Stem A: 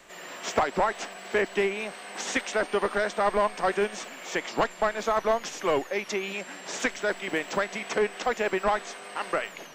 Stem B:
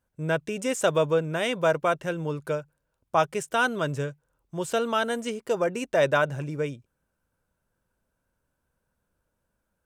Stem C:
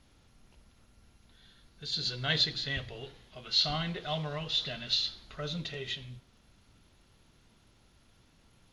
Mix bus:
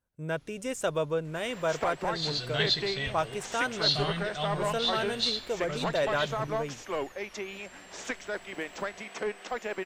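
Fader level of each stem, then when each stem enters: -7.5 dB, -6.5 dB, +0.5 dB; 1.25 s, 0.00 s, 0.30 s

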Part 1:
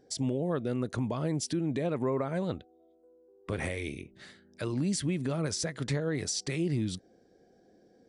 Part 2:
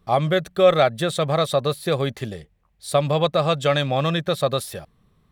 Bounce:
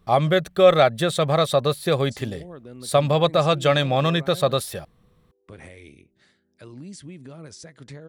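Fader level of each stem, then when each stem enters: -9.5 dB, +1.0 dB; 2.00 s, 0.00 s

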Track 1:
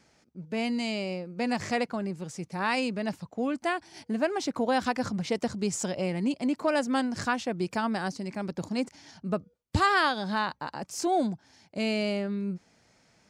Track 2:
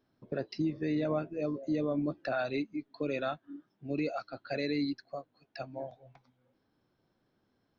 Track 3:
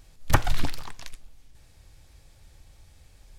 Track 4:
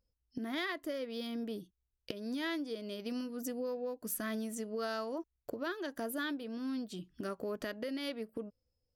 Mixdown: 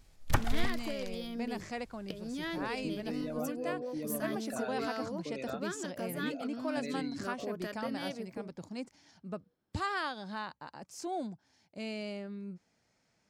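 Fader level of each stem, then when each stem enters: -11.0 dB, -8.0 dB, -8.0 dB, -1.5 dB; 0.00 s, 2.25 s, 0.00 s, 0.00 s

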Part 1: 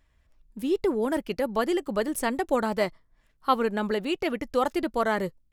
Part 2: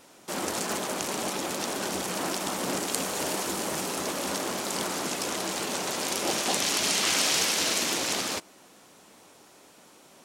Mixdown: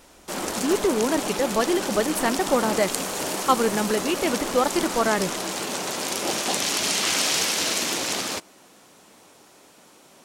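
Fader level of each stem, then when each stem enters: +3.0 dB, +2.0 dB; 0.00 s, 0.00 s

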